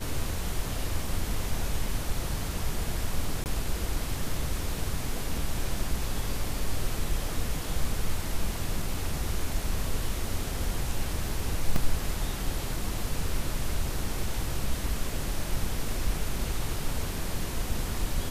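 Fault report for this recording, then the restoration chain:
0:03.44–0:03.46: drop-out 19 ms
0:11.76: drop-out 2.2 ms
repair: repair the gap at 0:03.44, 19 ms
repair the gap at 0:11.76, 2.2 ms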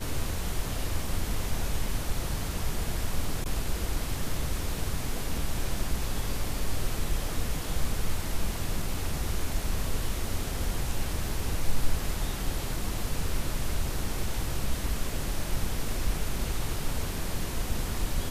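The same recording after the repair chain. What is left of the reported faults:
none of them is left

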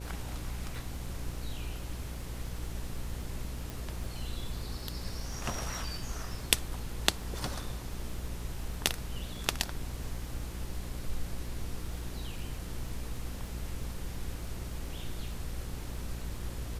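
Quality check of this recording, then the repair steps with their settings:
mains buzz 60 Hz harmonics 9 −41 dBFS
surface crackle 35 per second −43 dBFS
0:03.70: click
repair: click removal
hum removal 60 Hz, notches 9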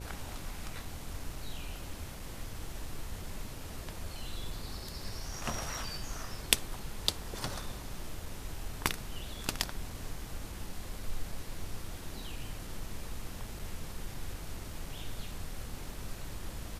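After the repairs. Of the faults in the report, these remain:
none of them is left

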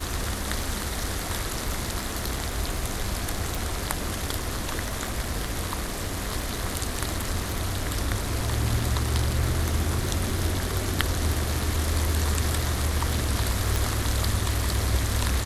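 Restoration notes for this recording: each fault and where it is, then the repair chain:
surface crackle 34 per second −31 dBFS
0:03.55: click
0:13.76: click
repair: click removal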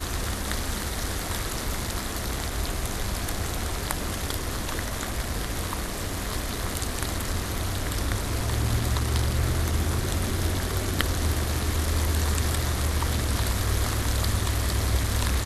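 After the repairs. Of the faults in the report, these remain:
0:03.55: click

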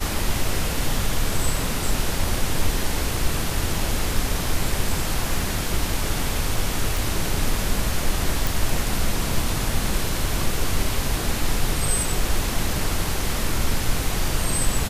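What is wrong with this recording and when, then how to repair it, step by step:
0:06.97: click
0:08.47: click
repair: click removal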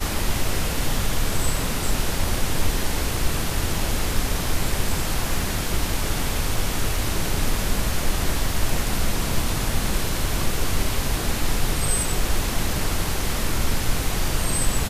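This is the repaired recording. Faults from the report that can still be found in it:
none of them is left

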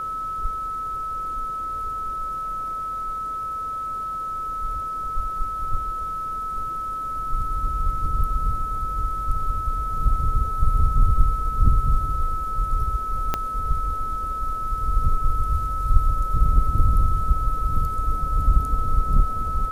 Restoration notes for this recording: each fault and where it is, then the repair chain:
whistle 1,300 Hz −26 dBFS
0:13.34: click −9 dBFS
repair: click removal
notch filter 1,300 Hz, Q 30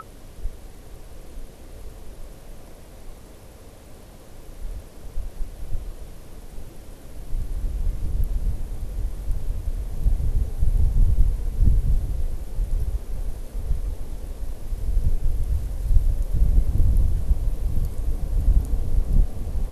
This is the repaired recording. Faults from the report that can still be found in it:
0:13.34: click

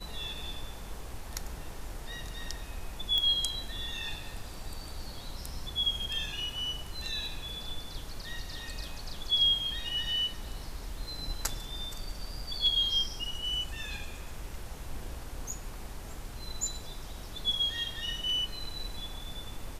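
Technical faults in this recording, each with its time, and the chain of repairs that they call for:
0:03.18: click −16 dBFS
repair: click removal

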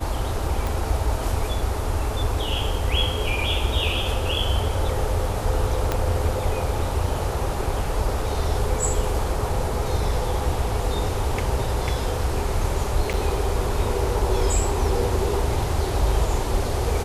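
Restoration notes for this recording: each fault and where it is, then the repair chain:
0:00.67: click
0:05.92: click −8 dBFS
0:13.13–0:13.14: drop-out 7.3 ms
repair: click removal
repair the gap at 0:13.13, 7.3 ms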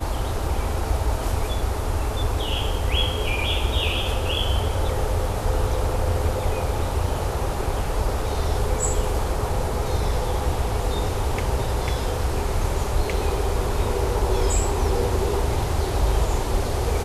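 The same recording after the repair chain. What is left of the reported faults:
0:00.67: click
0:05.92: click

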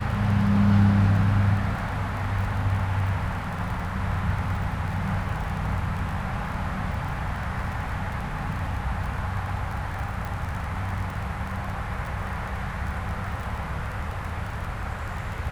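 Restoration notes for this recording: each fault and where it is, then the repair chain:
surface crackle 22 per second −31 dBFS
0:10.25: click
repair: click removal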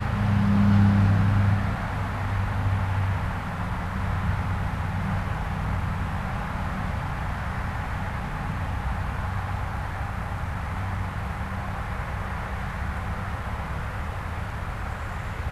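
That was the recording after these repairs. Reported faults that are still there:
none of them is left

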